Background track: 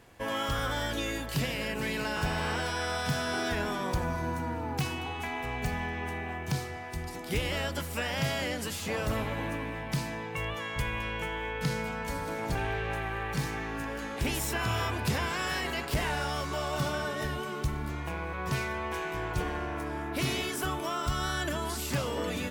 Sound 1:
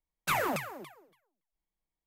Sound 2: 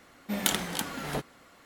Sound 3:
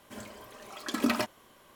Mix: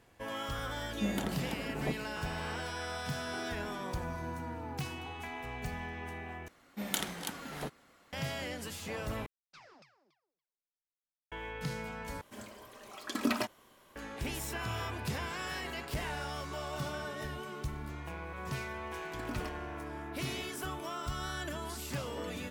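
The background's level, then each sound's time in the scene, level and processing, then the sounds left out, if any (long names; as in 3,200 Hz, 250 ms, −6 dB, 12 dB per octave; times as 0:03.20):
background track −7 dB
0:00.72: mix in 2 −9.5 dB + tilt shelving filter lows +10 dB, about 1,200 Hz
0:06.48: overwrite with 2 −7 dB
0:09.26: overwrite with 1 −16.5 dB + transistor ladder low-pass 5,500 Hz, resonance 70%
0:12.21: overwrite with 3 −3.5 dB
0:18.25: mix in 3 −15.5 dB + one scale factor per block 7 bits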